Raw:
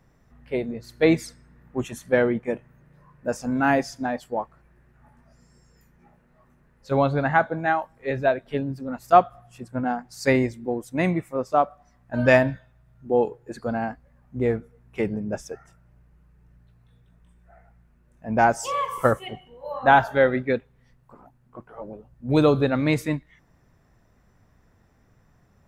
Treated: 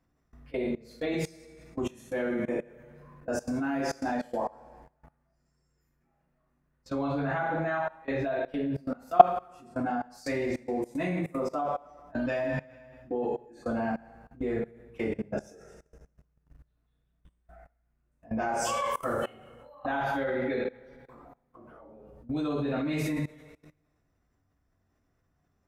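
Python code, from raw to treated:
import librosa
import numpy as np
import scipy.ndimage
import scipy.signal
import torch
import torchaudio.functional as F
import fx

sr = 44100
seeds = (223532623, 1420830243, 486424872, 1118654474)

y = fx.rev_double_slope(x, sr, seeds[0], early_s=0.54, late_s=1.6, knee_db=-17, drr_db=-9.0)
y = fx.level_steps(y, sr, step_db=22)
y = y * librosa.db_to_amplitude(-7.5)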